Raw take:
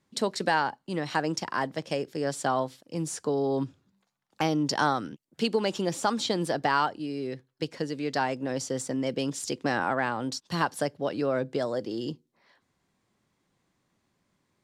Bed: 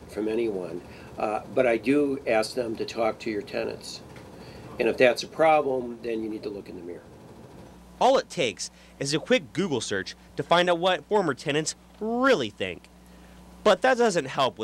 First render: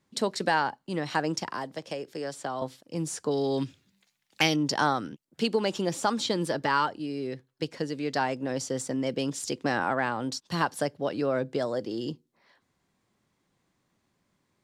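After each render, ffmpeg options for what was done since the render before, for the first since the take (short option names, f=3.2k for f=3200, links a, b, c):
-filter_complex "[0:a]asettb=1/sr,asplit=3[a][b][c];[a]atrim=end=1.504[d];[b]atrim=start=1.5:end=2.62,asetpts=PTS-STARTPTS,afade=t=in:d=0.004:c=qsin,afade=t=out:st=1.116:d=0.004:c=qsin,acrossover=split=340|1100|3200[e][f][g][h];[e]acompressor=threshold=-45dB:ratio=3[i];[f]acompressor=threshold=-34dB:ratio=3[j];[g]acompressor=threshold=-45dB:ratio=3[k];[h]acompressor=threshold=-46dB:ratio=3[l];[i][j][k][l]amix=inputs=4:normalize=0[m];[c]atrim=start=2.616[n];[d][m]acrossfade=d=0.004:c1=hsin:c2=qsin[o];[o][n]acrossfade=d=0.004:c1=qsin:c2=hsin,asettb=1/sr,asplit=3[p][q][r];[p]atrim=end=3.314[s];[q]atrim=start=3.31:end=4.56,asetpts=PTS-STARTPTS,afade=t=in:d=0.004:c=qsin,afade=t=out:st=1.246:d=0.004:c=qsin,highshelf=f=1.6k:t=q:w=1.5:g=9[t];[r]atrim=start=4.556[u];[s][t]acrossfade=d=0.004:c1=hsin:c2=qsin[v];[v][u]acrossfade=d=0.004:c1=qsin:c2=hsin,asettb=1/sr,asplit=3[w][x][y];[w]atrim=end=6.224[z];[x]atrim=start=6.22:end=6.88,asetpts=PTS-STARTPTS,afade=t=in:d=0.004:c=qsin,afade=t=out:st=0.656:d=0.004:c=qsin,asuperstop=centerf=730:order=4:qfactor=5.9[aa];[y]atrim=start=6.876[ab];[z][aa]acrossfade=d=0.004:c1=hsin:c2=qsin[ac];[ac][ab]acrossfade=d=0.004:c1=qsin:c2=hsin"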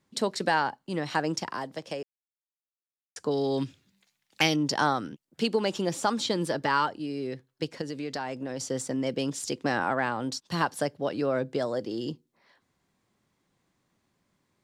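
-filter_complex "[0:a]asettb=1/sr,asplit=3[a][b][c];[a]atrim=end=7.814[d];[b]atrim=start=7.81:end=8.6,asetpts=PTS-STARTPTS,afade=t=in:d=0.004:c=qsin,afade=t=out:st=0.786:d=0.004:c=qsin,acompressor=threshold=-30dB:ratio=3:attack=3.2:release=140:knee=1:detection=peak[e];[c]atrim=start=8.596[f];[d][e]acrossfade=d=0.004:c1=hsin:c2=qsin[g];[g][f]acrossfade=d=0.004:c1=qsin:c2=hsin,asplit=3[h][i][j];[h]atrim=end=2.03,asetpts=PTS-STARTPTS,afade=t=out:st=2.026:d=0.004:c=hsin[k];[i]atrim=start=2.03:end=3.16,asetpts=PTS-STARTPTS,volume=0[l];[j]atrim=start=3.16,asetpts=PTS-STARTPTS,afade=t=in:d=0.004:c=hsin[m];[k][l][m]concat=n=3:v=0:a=1"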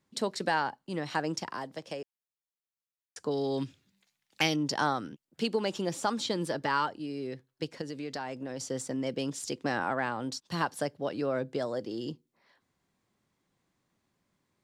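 -af "volume=-3.5dB"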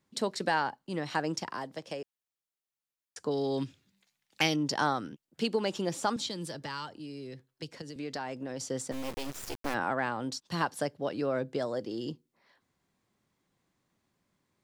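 -filter_complex "[0:a]asettb=1/sr,asplit=3[a][b][c];[a]atrim=end=6.164[d];[b]atrim=start=6.16:end=7.96,asetpts=PTS-STARTPTS,afade=t=in:d=0.004:c=qsin,afade=t=out:st=1.796:d=0.004:c=qsin,acrossover=split=160|3000[e][f][g];[f]acompressor=threshold=-46dB:ratio=2:attack=3.2:release=140:knee=2.83:detection=peak[h];[e][h][g]amix=inputs=3:normalize=0[i];[c]atrim=start=7.956[j];[d][i]acrossfade=d=0.004:c1=hsin:c2=qsin[k];[k][j]acrossfade=d=0.004:c1=qsin:c2=hsin,asplit=3[l][m][n];[l]afade=t=out:st=8.91:d=0.02[o];[m]acrusher=bits=4:dc=4:mix=0:aa=0.000001,afade=t=in:st=8.91:d=0.02,afade=t=out:st=9.73:d=0.02[p];[n]afade=t=in:st=9.73:d=0.02[q];[o][p][q]amix=inputs=3:normalize=0"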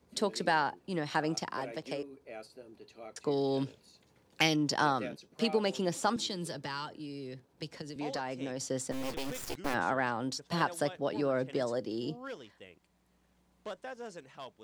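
-filter_complex "[1:a]volume=-22.5dB[a];[0:a][a]amix=inputs=2:normalize=0"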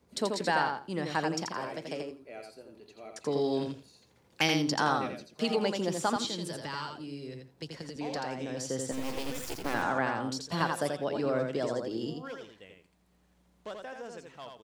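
-af "aecho=1:1:84|168|252:0.596|0.101|0.0172"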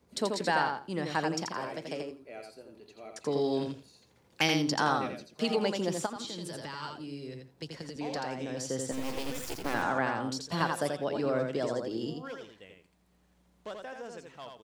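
-filter_complex "[0:a]asplit=3[a][b][c];[a]afade=t=out:st=6.05:d=0.02[d];[b]acompressor=threshold=-35dB:ratio=6:attack=3.2:release=140:knee=1:detection=peak,afade=t=in:st=6.05:d=0.02,afade=t=out:st=6.82:d=0.02[e];[c]afade=t=in:st=6.82:d=0.02[f];[d][e][f]amix=inputs=3:normalize=0"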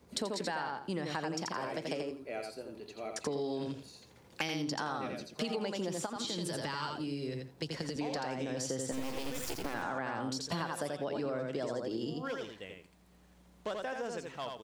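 -filter_complex "[0:a]asplit=2[a][b];[b]alimiter=level_in=0.5dB:limit=-24dB:level=0:latency=1:release=35,volume=-0.5dB,volume=-1dB[c];[a][c]amix=inputs=2:normalize=0,acompressor=threshold=-33dB:ratio=6"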